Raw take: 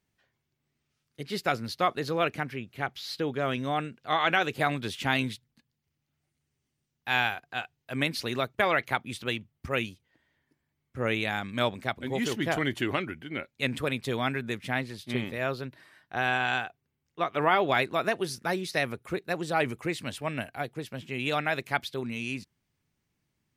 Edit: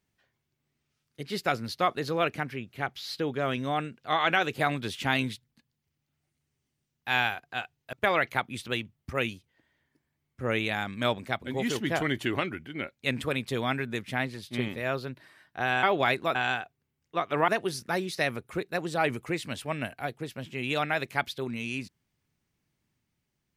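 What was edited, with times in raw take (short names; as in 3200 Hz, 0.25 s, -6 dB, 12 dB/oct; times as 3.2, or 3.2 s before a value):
7.93–8.49 cut
17.52–18.04 move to 16.39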